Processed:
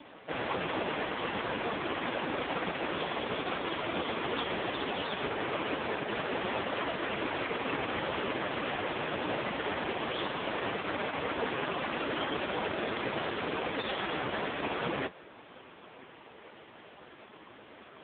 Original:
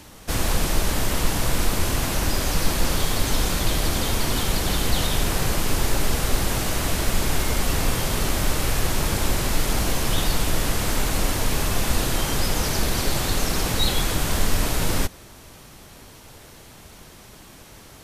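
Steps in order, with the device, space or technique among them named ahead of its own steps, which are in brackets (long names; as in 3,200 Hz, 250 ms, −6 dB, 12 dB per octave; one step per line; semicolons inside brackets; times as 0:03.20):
telephone (band-pass filter 280–3,300 Hz; soft clipping −23 dBFS, distortion −19 dB; level +3 dB; AMR narrowband 4.75 kbit/s 8,000 Hz)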